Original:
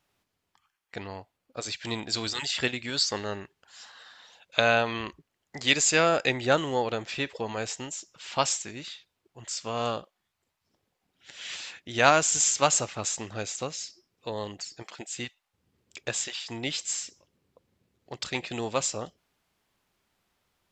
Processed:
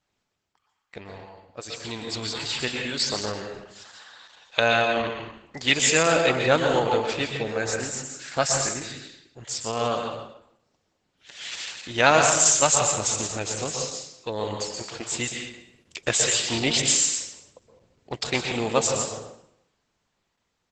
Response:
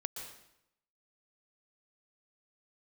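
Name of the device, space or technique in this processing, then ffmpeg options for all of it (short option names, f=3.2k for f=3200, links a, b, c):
speakerphone in a meeting room: -filter_complex "[0:a]asettb=1/sr,asplit=3[a][b][c];[a]atrim=end=7.374[d];[b]atrim=start=7.37:end=9.44,asetpts=PTS-STARTPTS,afade=t=in:d=0.004:c=qsin,afade=t=out:st=2.066:d=0.004:c=qsin,equalizer=f=1k:t=o:w=0.33:g=-12,equalizer=f=1.6k:t=o:w=0.33:g=9,equalizer=f=3.15k:t=o:w=0.33:g=-12[e];[c]atrim=start=9.436[f];[d][e]acrossfade=d=0.004:c1=hsin:c2=qsin[g];[g][f]acrossfade=d=0.004:c1=qsin:c2=hsin[h];[1:a]atrim=start_sample=2205[i];[h][i]afir=irnorm=-1:irlink=0,asplit=2[j][k];[k]adelay=140,highpass=300,lowpass=3.4k,asoftclip=type=hard:threshold=-15dB,volume=-18dB[l];[j][l]amix=inputs=2:normalize=0,dynaudnorm=f=310:g=17:m=13dB" -ar 48000 -c:a libopus -b:a 12k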